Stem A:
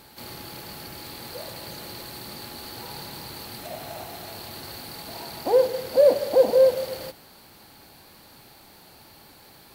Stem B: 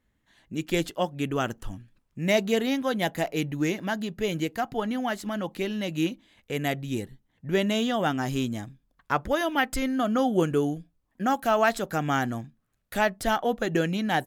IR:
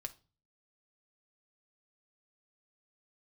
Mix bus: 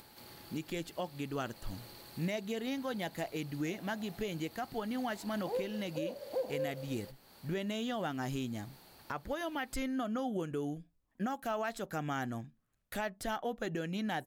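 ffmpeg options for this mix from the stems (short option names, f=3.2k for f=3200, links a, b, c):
-filter_complex "[0:a]acompressor=mode=upward:threshold=-36dB:ratio=2.5,volume=-14dB[a];[1:a]volume=-4.5dB[b];[a][b]amix=inputs=2:normalize=0,alimiter=level_in=2.5dB:limit=-24dB:level=0:latency=1:release=354,volume=-2.5dB"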